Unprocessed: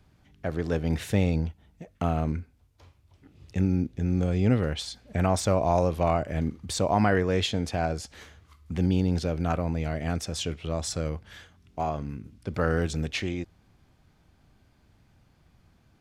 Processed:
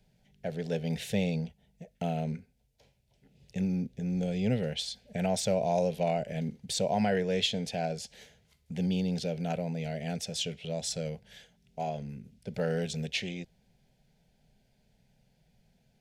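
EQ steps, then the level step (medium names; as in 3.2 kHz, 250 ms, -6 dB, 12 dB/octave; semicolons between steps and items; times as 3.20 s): static phaser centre 310 Hz, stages 6; dynamic bell 3.2 kHz, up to +5 dB, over -51 dBFS, Q 1.1; -2.5 dB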